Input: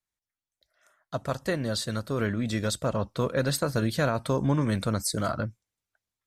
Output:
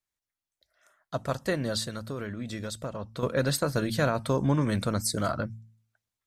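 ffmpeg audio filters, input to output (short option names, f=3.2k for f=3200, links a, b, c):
-filter_complex "[0:a]bandreject=f=55.65:t=h:w=4,bandreject=f=111.3:t=h:w=4,bandreject=f=166.95:t=h:w=4,bandreject=f=222.6:t=h:w=4,asettb=1/sr,asplit=3[a][b][c];[a]atrim=end=1.844[d];[b]atrim=start=1.84:end=3.23,asetpts=PTS-STARTPTS,afade=t=in:d=0.004:c=qsin,afade=t=out:st=1.386:d=0.004:c=qsin,acompressor=threshold=-34dB:ratio=3[e];[c]atrim=start=3.226[f];[d][e]acrossfade=d=0.004:c1=hsin:c2=qsin[g];[g][f]acrossfade=d=0.004:c1=qsin:c2=hsin"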